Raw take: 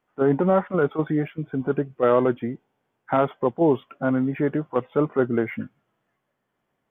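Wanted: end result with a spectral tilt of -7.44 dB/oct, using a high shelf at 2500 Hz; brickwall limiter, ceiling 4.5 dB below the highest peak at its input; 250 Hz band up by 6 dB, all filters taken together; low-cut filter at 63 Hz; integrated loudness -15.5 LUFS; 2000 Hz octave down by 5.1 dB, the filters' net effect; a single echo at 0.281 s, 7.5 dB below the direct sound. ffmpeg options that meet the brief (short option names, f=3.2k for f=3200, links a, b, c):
-af "highpass=63,equalizer=f=250:t=o:g=7.5,equalizer=f=2k:t=o:g=-5,highshelf=f=2.5k:g=-6.5,alimiter=limit=-10dB:level=0:latency=1,aecho=1:1:281:0.422,volume=5.5dB"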